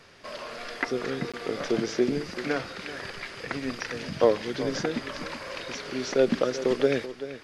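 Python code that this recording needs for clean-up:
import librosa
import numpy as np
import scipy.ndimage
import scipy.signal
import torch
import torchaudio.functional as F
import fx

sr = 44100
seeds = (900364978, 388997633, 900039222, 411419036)

y = fx.fix_interpolate(x, sr, at_s=(1.32,), length_ms=16.0)
y = fx.fix_echo_inverse(y, sr, delay_ms=384, level_db=-13.0)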